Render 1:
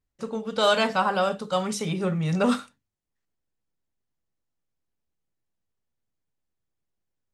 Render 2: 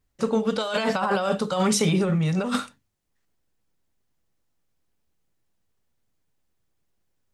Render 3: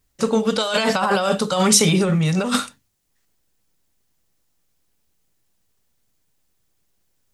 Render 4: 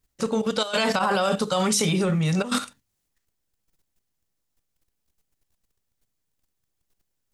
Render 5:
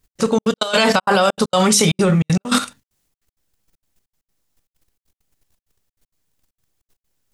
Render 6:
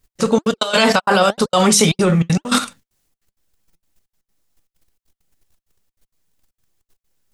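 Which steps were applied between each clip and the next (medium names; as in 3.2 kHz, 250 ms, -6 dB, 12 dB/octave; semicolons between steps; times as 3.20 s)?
compressor with a negative ratio -28 dBFS, ratio -1; trim +5 dB
treble shelf 3.4 kHz +8.5 dB; trim +4 dB
level held to a coarse grid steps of 11 dB
trance gate "x.xxx.x.xxxx" 196 bpm -60 dB; trim +8 dB
flange 2 Hz, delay 1.3 ms, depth 4.9 ms, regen +73%; trim +5.5 dB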